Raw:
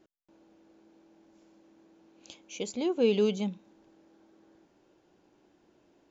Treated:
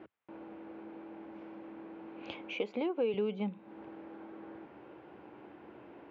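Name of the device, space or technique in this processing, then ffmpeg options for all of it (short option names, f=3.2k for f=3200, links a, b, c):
bass amplifier: -filter_complex "[0:a]asettb=1/sr,asplit=3[a][b][c];[a]atrim=end=2.534[d];[b]atrim=start=2.53:end=3.14,asetpts=PTS-STARTPTS,afade=t=in:d=0.004:c=qsin,afade=t=out:st=0.606:d=0.004:c=qsin,highpass=260[e];[c]atrim=start=3.136[f];[d][e]acrossfade=d=0.004:c1=hsin:c2=qsin[g];[g][f]acrossfade=d=0.004:c1=qsin:c2=hsin,acompressor=threshold=-46dB:ratio=5,highpass=f=81:w=0.5412,highpass=f=81:w=1.3066,equalizer=f=100:t=q:w=4:g=-7,equalizer=f=170:t=q:w=4:g=-9,equalizer=f=260:t=q:w=4:g=-5,equalizer=f=370:t=q:w=4:g=-4,equalizer=f=620:t=q:w=4:g=-4,equalizer=f=1.7k:t=q:w=4:g=-3,lowpass=f=2.4k:w=0.5412,lowpass=f=2.4k:w=1.3066,volume=16.5dB"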